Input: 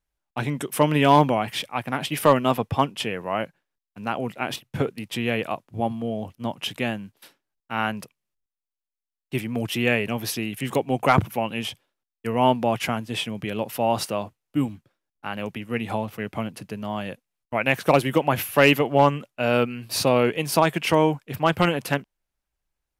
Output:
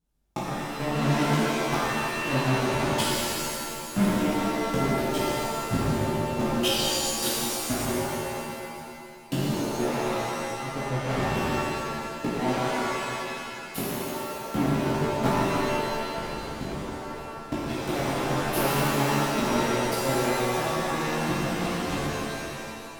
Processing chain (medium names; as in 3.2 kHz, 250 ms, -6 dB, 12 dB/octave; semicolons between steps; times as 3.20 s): ten-band graphic EQ 125 Hz +12 dB, 250 Hz +11 dB, 2 kHz -7 dB; inverted gate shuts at -19 dBFS, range -39 dB; in parallel at -9.5 dB: fuzz box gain 55 dB, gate -48 dBFS; on the sum: chorus voices 4, 0.43 Hz, delay 18 ms, depth 4.5 ms; pitch-shifted reverb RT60 2.3 s, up +7 st, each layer -2 dB, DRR -7.5 dB